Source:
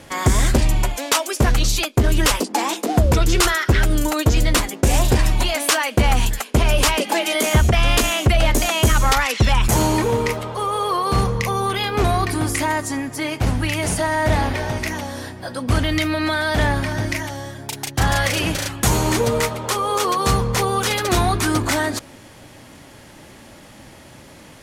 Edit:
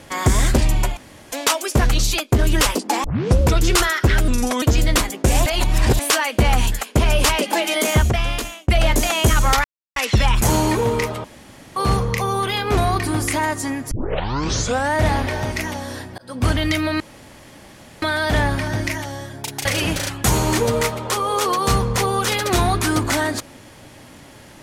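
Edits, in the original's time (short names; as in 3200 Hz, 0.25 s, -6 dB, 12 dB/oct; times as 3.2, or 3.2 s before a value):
0.97 insert room tone 0.35 s
2.69 tape start 0.38 s
3.93–4.21 speed 82%
5.05–5.58 reverse
7.51–8.27 fade out
9.23 insert silence 0.32 s
10.51–11.03 room tone
13.18 tape start 1.04 s
15.45–15.7 fade in
16.27 insert room tone 1.02 s
17.9–18.24 cut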